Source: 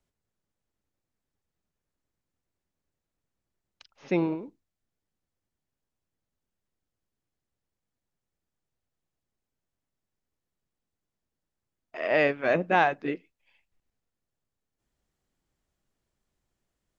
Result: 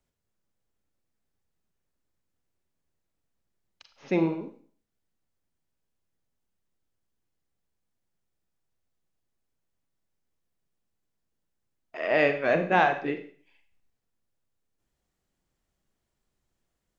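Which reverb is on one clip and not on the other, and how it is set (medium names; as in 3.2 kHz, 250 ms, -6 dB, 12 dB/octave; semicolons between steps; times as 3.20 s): Schroeder reverb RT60 0.47 s, combs from 33 ms, DRR 7 dB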